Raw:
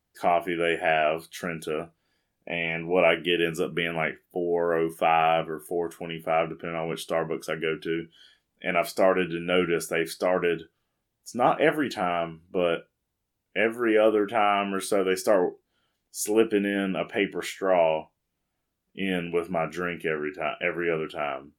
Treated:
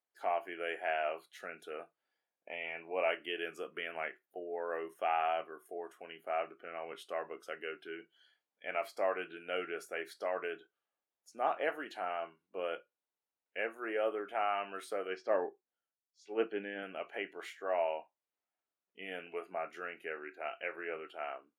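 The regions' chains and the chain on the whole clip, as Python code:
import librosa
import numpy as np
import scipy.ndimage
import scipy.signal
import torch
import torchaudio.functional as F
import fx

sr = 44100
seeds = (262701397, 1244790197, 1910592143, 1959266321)

y = fx.chain(x, sr, fx.lowpass(hz=4700.0, slope=24),
    fx.low_shelf(hz=190.0, db=9.5),
    fx.band_widen(depth_pct=70), at=(15.07, 16.83))
y = scipy.signal.sosfilt(scipy.signal.butter(2, 580.0, 'highpass', fs=sr, output='sos'), y)
y = fx.high_shelf(y, sr, hz=3300.0, db=-11.5)
y = y * 10.0 ** (-8.5 / 20.0)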